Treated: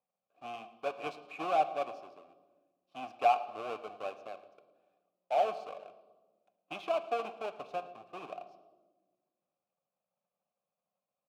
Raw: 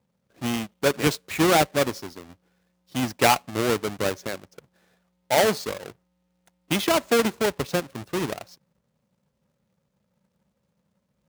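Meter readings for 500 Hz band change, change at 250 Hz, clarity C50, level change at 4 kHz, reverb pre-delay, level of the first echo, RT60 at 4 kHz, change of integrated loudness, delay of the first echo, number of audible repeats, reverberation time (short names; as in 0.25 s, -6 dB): -11.5 dB, -24.0 dB, 13.0 dB, -20.5 dB, 7 ms, -21.0 dB, 0.95 s, -11.5 dB, 0.112 s, 1, 1.3 s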